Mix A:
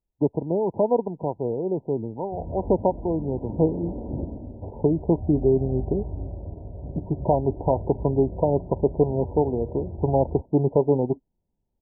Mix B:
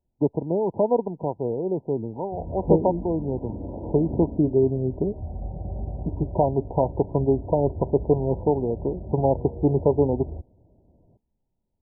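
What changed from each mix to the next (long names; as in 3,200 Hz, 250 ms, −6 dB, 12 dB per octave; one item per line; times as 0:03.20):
second voice: entry −0.90 s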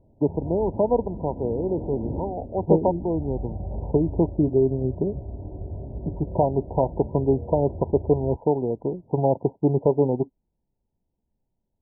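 background: entry −2.05 s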